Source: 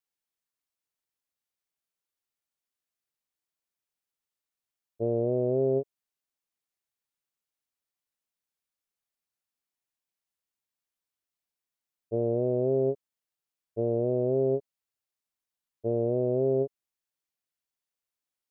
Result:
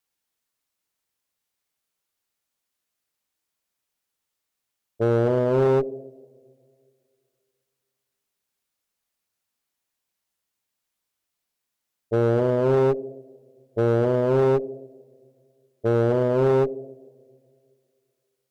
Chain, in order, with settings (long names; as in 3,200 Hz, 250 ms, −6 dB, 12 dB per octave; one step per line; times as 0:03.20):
coupled-rooms reverb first 0.93 s, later 2.6 s, from −18 dB, DRR 9.5 dB
asymmetric clip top −29 dBFS, bottom −20 dBFS
level +8 dB